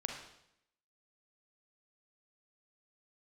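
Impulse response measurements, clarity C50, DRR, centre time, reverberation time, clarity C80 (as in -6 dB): 3.5 dB, 1.5 dB, 37 ms, 0.75 s, 7.0 dB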